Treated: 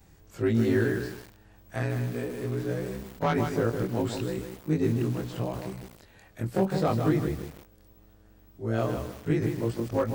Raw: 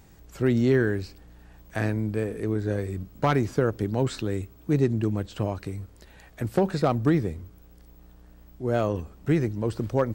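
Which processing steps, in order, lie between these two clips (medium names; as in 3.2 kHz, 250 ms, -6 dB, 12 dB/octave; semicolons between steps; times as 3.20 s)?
short-time spectra conjugated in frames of 52 ms; bit-crushed delay 156 ms, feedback 35%, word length 7-bit, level -6 dB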